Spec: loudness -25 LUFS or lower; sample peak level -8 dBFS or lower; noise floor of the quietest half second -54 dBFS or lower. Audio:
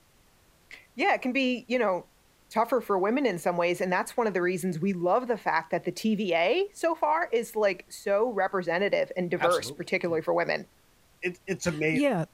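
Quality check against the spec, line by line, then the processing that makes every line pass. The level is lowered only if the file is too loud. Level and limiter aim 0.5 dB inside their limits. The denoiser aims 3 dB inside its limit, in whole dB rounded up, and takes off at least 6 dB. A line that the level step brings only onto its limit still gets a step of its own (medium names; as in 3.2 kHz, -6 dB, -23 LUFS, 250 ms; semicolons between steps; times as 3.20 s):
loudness -27.5 LUFS: pass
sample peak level -10.0 dBFS: pass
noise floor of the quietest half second -61 dBFS: pass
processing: none needed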